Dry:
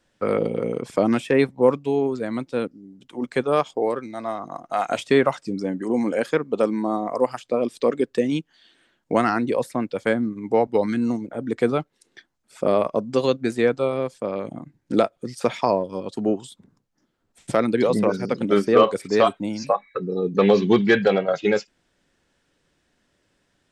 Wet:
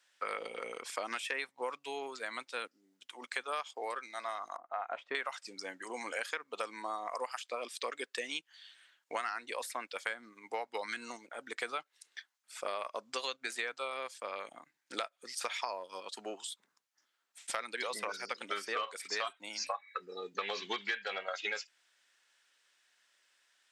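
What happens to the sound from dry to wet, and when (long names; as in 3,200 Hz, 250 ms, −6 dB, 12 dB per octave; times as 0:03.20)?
0:04.56–0:05.15: low-pass filter 1,000 Hz
whole clip: high-pass filter 1,400 Hz 12 dB per octave; downward compressor 8 to 1, threshold −34 dBFS; level +1 dB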